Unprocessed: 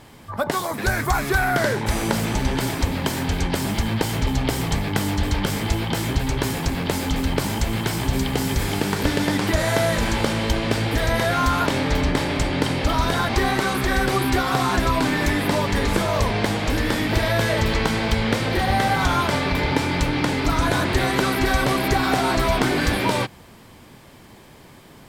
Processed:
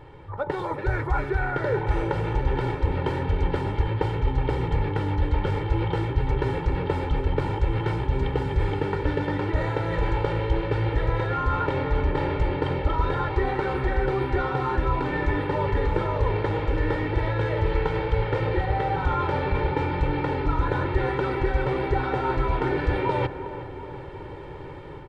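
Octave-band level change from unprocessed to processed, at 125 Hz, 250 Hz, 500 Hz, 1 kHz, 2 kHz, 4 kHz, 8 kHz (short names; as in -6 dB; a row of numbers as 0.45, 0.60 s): -1.5 dB, -7.0 dB, -2.0 dB, -4.0 dB, -8.0 dB, -15.0 dB, under -25 dB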